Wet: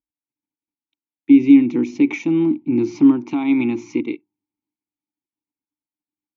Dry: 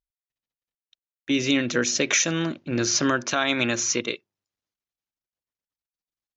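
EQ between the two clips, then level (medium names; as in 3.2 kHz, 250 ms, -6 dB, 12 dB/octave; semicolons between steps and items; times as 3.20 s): vowel filter u; tilt shelf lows +3.5 dB, about 1.3 kHz; bass shelf 280 Hz +11.5 dB; +9.0 dB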